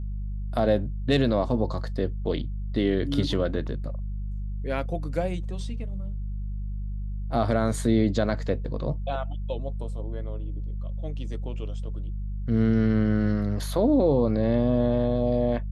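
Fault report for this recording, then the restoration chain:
hum 50 Hz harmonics 4 -31 dBFS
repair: de-hum 50 Hz, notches 4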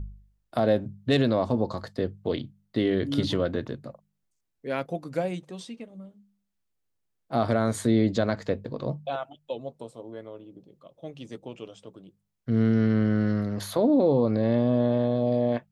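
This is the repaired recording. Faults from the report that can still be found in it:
nothing left

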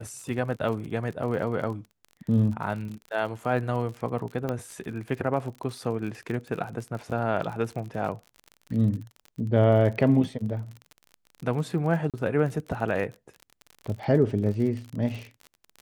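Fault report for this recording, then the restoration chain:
crackle 42 per s -34 dBFS
4.49 s: pop -17 dBFS
12.10–12.14 s: dropout 37 ms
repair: de-click; interpolate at 12.10 s, 37 ms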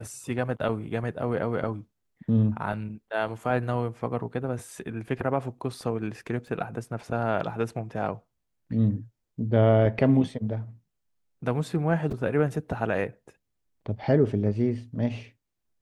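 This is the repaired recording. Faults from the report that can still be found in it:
nothing left

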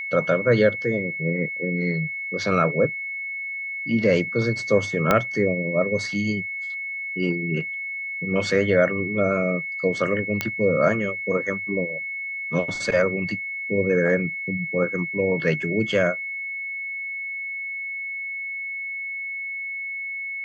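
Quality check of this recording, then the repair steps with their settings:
whine 2.2 kHz -28 dBFS
5.11 s: pop -4 dBFS
10.41 s: pop -8 dBFS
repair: de-click; band-stop 2.2 kHz, Q 30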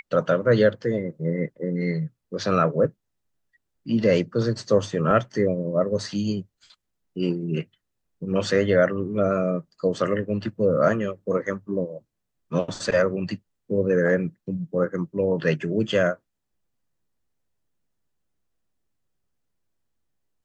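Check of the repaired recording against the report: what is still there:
5.11 s: pop

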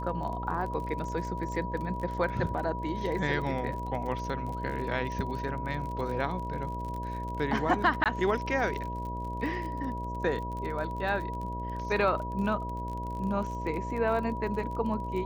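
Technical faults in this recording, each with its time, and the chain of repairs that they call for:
buzz 60 Hz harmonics 11 -37 dBFS
crackle 36 per s -36 dBFS
whine 970 Hz -36 dBFS
8.04–8.06 s: dropout 17 ms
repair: de-click; de-hum 60 Hz, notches 11; band-stop 970 Hz, Q 30; interpolate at 8.04 s, 17 ms

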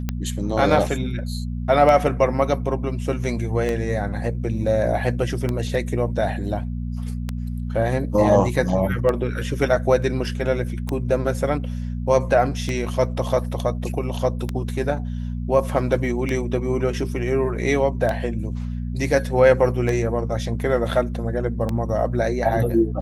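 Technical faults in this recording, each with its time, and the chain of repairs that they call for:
hum 60 Hz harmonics 4 -27 dBFS
tick 33 1/3 rpm -11 dBFS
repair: de-click; de-hum 60 Hz, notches 4

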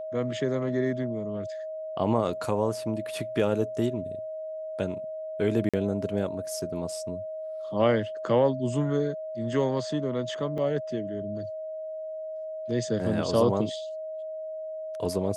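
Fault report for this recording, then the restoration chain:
whine 630 Hz -33 dBFS
5.69–5.74 s: dropout 46 ms
10.58 s: dropout 3.8 ms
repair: band-stop 630 Hz, Q 30; interpolate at 5.69 s, 46 ms; interpolate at 10.58 s, 3.8 ms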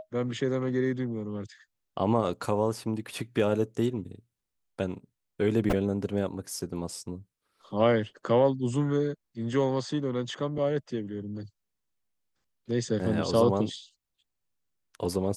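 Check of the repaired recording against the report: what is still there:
nothing left

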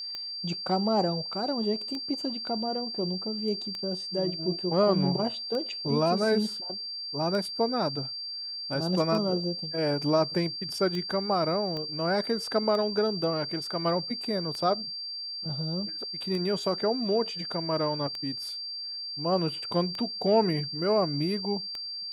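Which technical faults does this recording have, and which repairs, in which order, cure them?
tick 33 1/3 rpm -22 dBFS
whine 4.7 kHz -34 dBFS
11.77 s: pop -24 dBFS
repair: de-click; band-stop 4.7 kHz, Q 30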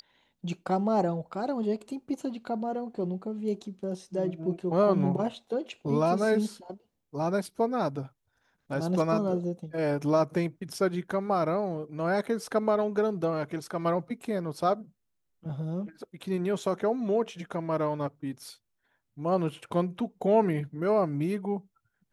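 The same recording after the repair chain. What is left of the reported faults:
11.77 s: pop

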